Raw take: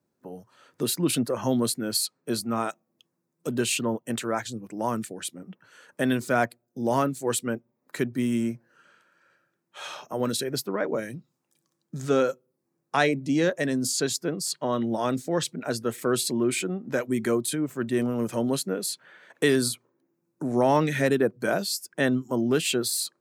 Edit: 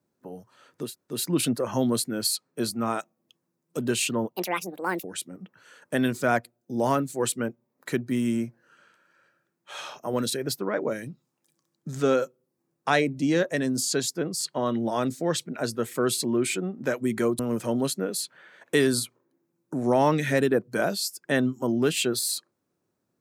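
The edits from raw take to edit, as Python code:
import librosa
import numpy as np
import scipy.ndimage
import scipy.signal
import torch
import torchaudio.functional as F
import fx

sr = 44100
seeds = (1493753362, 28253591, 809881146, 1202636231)

y = fx.edit(x, sr, fx.insert_room_tone(at_s=0.84, length_s=0.3, crossfade_s=0.24),
    fx.speed_span(start_s=4.06, length_s=1.05, speed=1.54),
    fx.cut(start_s=17.46, length_s=0.62), tone=tone)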